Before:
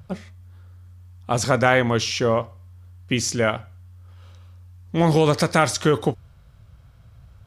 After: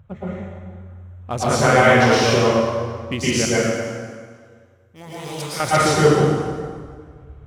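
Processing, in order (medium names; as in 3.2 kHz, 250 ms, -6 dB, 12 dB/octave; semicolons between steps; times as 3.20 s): local Wiener filter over 9 samples; 3.45–5.60 s: pre-emphasis filter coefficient 0.9; plate-style reverb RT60 1.8 s, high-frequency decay 0.75×, pre-delay 100 ms, DRR -9.5 dB; trim -4 dB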